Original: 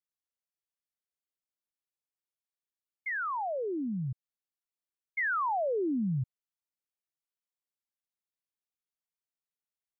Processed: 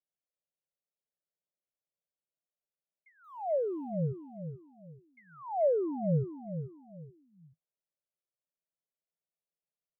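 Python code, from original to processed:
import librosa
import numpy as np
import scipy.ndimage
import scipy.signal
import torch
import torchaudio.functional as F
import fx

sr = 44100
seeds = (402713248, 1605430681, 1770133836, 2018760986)

p1 = fx.crossing_spikes(x, sr, level_db=-42.5, at=(3.24, 4.07))
p2 = fx.curve_eq(p1, sr, hz=(110.0, 160.0, 230.0, 600.0, 1800.0, 2600.0, 4700.0), db=(0, 13, -2, 14, -30, -6, -23))
p3 = p2 + fx.echo_feedback(p2, sr, ms=432, feedback_pct=30, wet_db=-9, dry=0)
y = F.gain(torch.from_numpy(p3), -7.5).numpy()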